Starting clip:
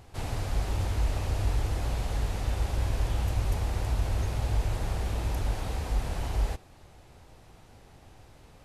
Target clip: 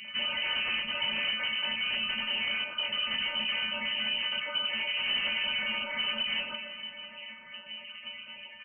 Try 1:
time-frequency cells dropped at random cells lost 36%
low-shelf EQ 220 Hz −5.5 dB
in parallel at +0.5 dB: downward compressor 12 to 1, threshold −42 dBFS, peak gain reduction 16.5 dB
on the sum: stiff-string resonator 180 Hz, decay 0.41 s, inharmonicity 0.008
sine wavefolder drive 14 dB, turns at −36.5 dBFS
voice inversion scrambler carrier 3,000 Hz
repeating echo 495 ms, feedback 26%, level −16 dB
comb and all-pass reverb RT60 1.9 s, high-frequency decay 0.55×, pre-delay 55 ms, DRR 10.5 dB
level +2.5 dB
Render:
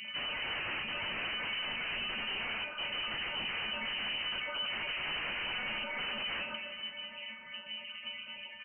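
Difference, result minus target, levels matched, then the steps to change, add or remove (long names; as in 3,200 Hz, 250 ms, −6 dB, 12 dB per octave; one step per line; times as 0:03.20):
sine wavefolder: distortion +14 dB
change: sine wavefolder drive 14 dB, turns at −30 dBFS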